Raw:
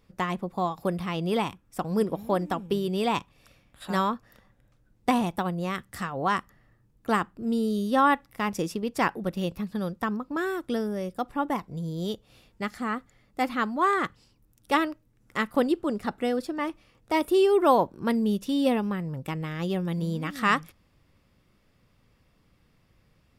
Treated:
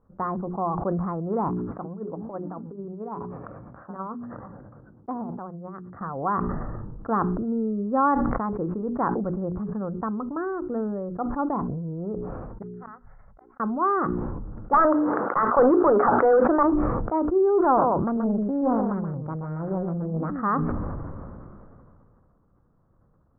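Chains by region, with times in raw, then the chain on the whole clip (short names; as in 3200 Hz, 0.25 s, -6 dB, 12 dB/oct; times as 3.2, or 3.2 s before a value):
1.48–6.01 HPF 110 Hz + compressor 1.5:1, threshold -36 dBFS + dB-linear tremolo 9.1 Hz, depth 19 dB
12.62–13.6 passive tone stack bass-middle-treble 10-0-10 + notch 1200 Hz, Q 6.4 + flipped gate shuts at -33 dBFS, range -38 dB
14.73–16.63 HPF 430 Hz + overdrive pedal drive 30 dB, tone 2500 Hz, clips at -8.5 dBFS
17.64–20.3 echo 0.128 s -6.5 dB + Doppler distortion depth 0.54 ms
whole clip: steep low-pass 1400 Hz 48 dB/oct; notches 60/120/180/240/300/360/420 Hz; sustainer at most 22 dB/s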